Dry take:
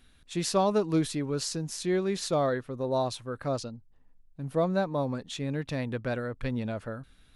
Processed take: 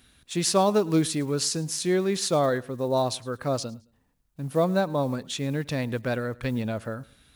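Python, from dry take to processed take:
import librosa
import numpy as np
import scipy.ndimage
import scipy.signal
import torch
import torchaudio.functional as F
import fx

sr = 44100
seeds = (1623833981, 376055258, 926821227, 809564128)

p1 = fx.block_float(x, sr, bits=7)
p2 = scipy.signal.sosfilt(scipy.signal.butter(2, 54.0, 'highpass', fs=sr, output='sos'), p1)
p3 = fx.high_shelf(p2, sr, hz=5100.0, db=6.0)
p4 = p3 + fx.echo_feedback(p3, sr, ms=108, feedback_pct=32, wet_db=-23, dry=0)
y = p4 * 10.0 ** (3.5 / 20.0)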